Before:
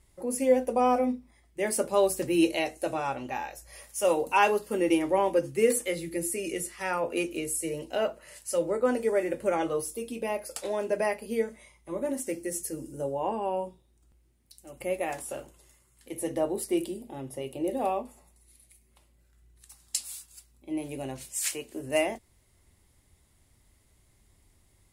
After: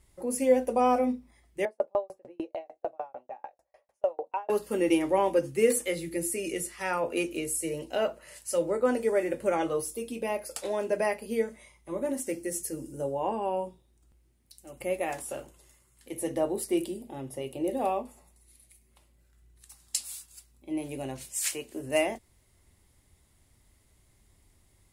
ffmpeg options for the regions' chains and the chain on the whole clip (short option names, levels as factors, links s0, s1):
-filter_complex "[0:a]asettb=1/sr,asplit=3[s0][s1][s2];[s0]atrim=end=1.654[s3];[s1]atrim=start=1.65:end=4.5,asetpts=PTS-STARTPTS,afade=t=in:d=0.004:c=qsin,afade=t=out:st=2.846:d=0.004:c=qsin,acontrast=44,bandpass=f=670:t=q:w=2.7,aeval=exprs='val(0)*pow(10,-39*if(lt(mod(6.7*n/s,1),2*abs(6.7)/1000),1-mod(6.7*n/s,1)/(2*abs(6.7)/1000),(mod(6.7*n/s,1)-2*abs(6.7)/1000)/(1-2*abs(6.7)/1000))/20)':c=same[s4];[s2]atrim=start=4.496[s5];[s3][s4]acrossfade=d=0.004:c1=hsin:c2=qsin[s6];[s6][s5]acrossfade=d=0.004:c1=qsin:c2=hsin"